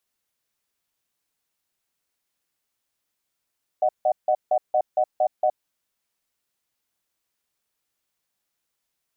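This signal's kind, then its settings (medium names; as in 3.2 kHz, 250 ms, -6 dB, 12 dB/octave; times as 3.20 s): cadence 615 Hz, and 740 Hz, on 0.07 s, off 0.16 s, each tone -19.5 dBFS 1.69 s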